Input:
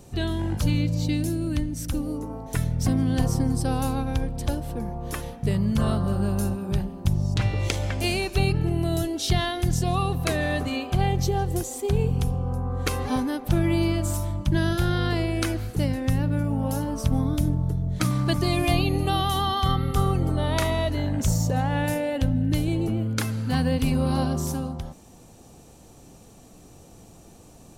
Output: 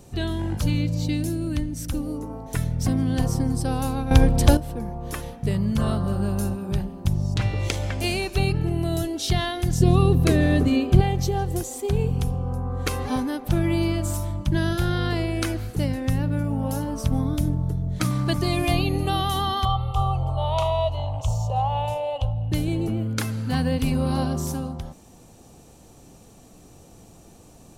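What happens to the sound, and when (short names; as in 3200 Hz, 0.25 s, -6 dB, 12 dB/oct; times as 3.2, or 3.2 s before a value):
4.11–4.57 gain +11 dB
9.8–11.01 resonant low shelf 530 Hz +8 dB, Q 1.5
19.65–22.52 EQ curve 130 Hz 0 dB, 220 Hz -30 dB, 420 Hz -11 dB, 690 Hz +6 dB, 1100 Hz +5 dB, 1700 Hz -24 dB, 2900 Hz +2 dB, 4800 Hz -9 dB, 7000 Hz -9 dB, 13000 Hz -16 dB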